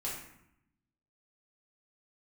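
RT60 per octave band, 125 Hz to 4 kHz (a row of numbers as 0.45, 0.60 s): 1.2, 1.2, 0.75, 0.80, 0.75, 0.50 s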